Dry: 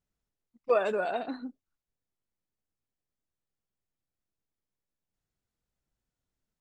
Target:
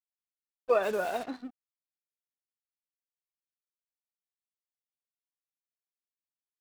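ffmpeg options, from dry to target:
-filter_complex "[0:a]asplit=3[s0][s1][s2];[s0]afade=t=out:st=0.82:d=0.02[s3];[s1]acrusher=bits=6:mix=0:aa=0.5,afade=t=in:st=0.82:d=0.02,afade=t=out:st=1.23:d=0.02[s4];[s2]afade=t=in:st=1.23:d=0.02[s5];[s3][s4][s5]amix=inputs=3:normalize=0,aeval=exprs='sgn(val(0))*max(abs(val(0))-0.00422,0)':c=same"

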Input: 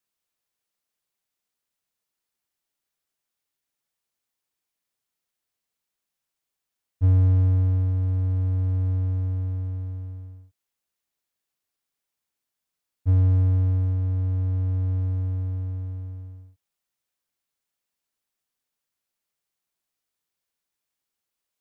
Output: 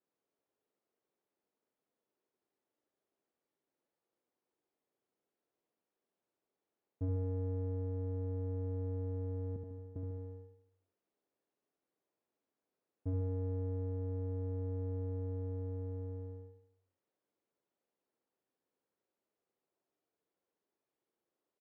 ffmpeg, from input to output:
-filter_complex "[0:a]asettb=1/sr,asplit=3[s0][s1][s2];[s0]atrim=end=9.564[s3];[s1]atrim=start=9.56:end=9.96,asetpts=PTS-STARTPTS,afade=t=in:d=0.004:c=qsin,afade=t=out:st=0.396:d=0.004:c=qsin,agate=range=0.0224:threshold=0.0891:ratio=3:detection=peak[s4];[s2]atrim=start=9.956[s5];[s3][s4]acrossfade=d=0.004:c1=hsin:c2=qsin[s6];[s6][s5]acrossfade=d=0.004:c1=qsin:c2=hsin,bandpass=f=390:t=q:w=1.5:csg=0,acompressor=threshold=0.00398:ratio=3,aecho=1:1:73|146|219|292|365|438:0.562|0.27|0.13|0.0622|0.0299|0.0143,volume=2.66"

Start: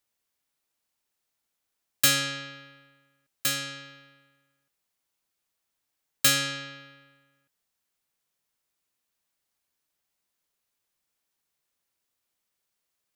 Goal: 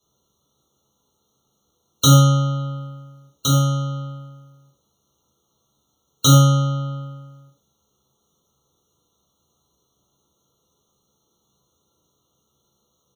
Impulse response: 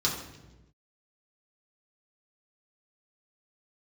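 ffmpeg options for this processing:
-filter_complex "[0:a]asettb=1/sr,asplit=3[s0][s1][s2];[s0]atrim=end=2.174[s3];[s1]atrim=start=2.17:end=2.58,asetpts=PTS-STARTPTS,afade=t=in:d=0.004:c=qsin,afade=t=out:st=0.406:d=0.004:c=qsin,lowpass=11000[s4];[s2]atrim=start=2.576[s5];[s3][s4]acrossfade=d=0.004:c1=hsin:c2=qsin[s6];[s6][s5]acrossfade=d=0.004:c1=qsin:c2=hsin,aecho=1:1:14|37:0.531|0.422,acrossover=split=820|3400[s7][s8][s9];[s7]acontrast=57[s10];[s10][s8][s9]amix=inputs=3:normalize=0[s11];[1:a]atrim=start_sample=2205,atrim=end_sample=6174,asetrate=48510,aresample=44100[s12];[s11][s12]afir=irnorm=-1:irlink=0,asplit=2[s13][s14];[s14]acompressor=threshold=0.0355:ratio=6,volume=1.12[s15];[s13][s15]amix=inputs=2:normalize=0,afftfilt=real='re*eq(mod(floor(b*sr/1024/1400),2),0)':imag='im*eq(mod(floor(b*sr/1024/1400),2),0)':win_size=1024:overlap=0.75,volume=0.891"

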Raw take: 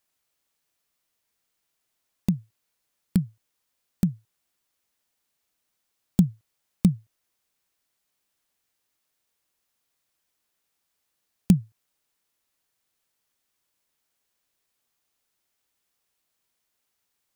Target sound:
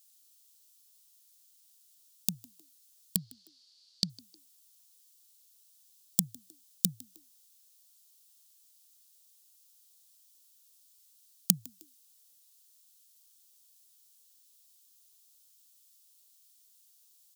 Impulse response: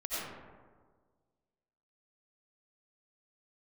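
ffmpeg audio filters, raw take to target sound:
-filter_complex "[0:a]asplit=2[s0][s1];[s1]acompressor=threshold=0.0562:ratio=6,volume=0.891[s2];[s0][s2]amix=inputs=2:normalize=0,asettb=1/sr,asplit=3[s3][s4][s5];[s3]atrim=end=3.164[s6];[s4]atrim=start=3.16:end=4.1,asetpts=PTS-STARTPTS,afade=t=in:d=0.004:c=qsin,afade=t=out:st=0.936:d=0.004:c=qsin,lowpass=f=4500:t=q:w=6.7[s7];[s5]atrim=start=4.096[s8];[s6][s7]acrossfade=d=0.004:c1=hsin:c2=qsin[s9];[s9][s8]acrossfade=d=0.004:c1=qsin:c2=hsin,asplit=3[s10][s11][s12];[s11]adelay=155,afreqshift=67,volume=0.0631[s13];[s12]adelay=310,afreqshift=134,volume=0.0234[s14];[s10][s13][s14]amix=inputs=3:normalize=0,aexciter=amount=8.3:drive=3.6:freq=3100,lowshelf=f=360:g=-11,volume=0.282"

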